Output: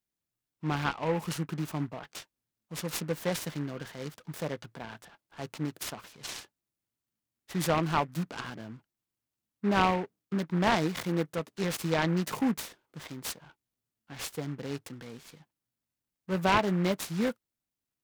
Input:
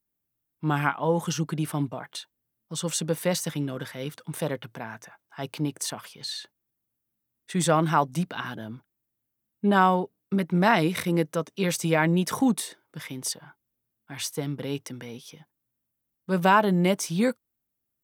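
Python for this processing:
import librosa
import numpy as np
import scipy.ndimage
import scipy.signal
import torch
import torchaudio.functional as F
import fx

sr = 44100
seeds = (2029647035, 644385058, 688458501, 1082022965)

y = fx.noise_mod_delay(x, sr, seeds[0], noise_hz=1300.0, depth_ms=0.064)
y = F.gain(torch.from_numpy(y), -5.5).numpy()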